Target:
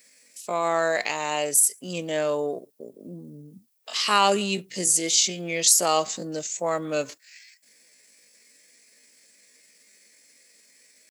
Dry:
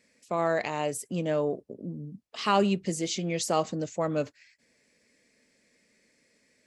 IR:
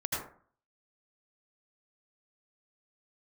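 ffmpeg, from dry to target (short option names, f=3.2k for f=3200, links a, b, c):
-af "aemphasis=mode=production:type=riaa,atempo=0.6,volume=4dB"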